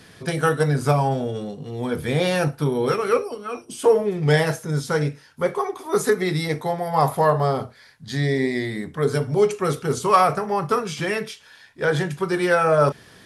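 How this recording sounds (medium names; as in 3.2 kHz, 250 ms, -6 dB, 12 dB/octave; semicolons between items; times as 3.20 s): noise floor -50 dBFS; spectral tilt -5.5 dB/octave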